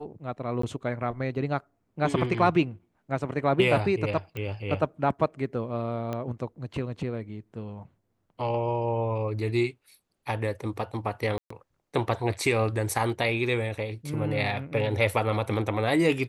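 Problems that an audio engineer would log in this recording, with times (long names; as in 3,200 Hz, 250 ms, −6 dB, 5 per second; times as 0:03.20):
0:00.62–0:00.63: drop-out 14 ms
0:04.37: click −22 dBFS
0:06.13: click −19 dBFS
0:11.38–0:11.50: drop-out 124 ms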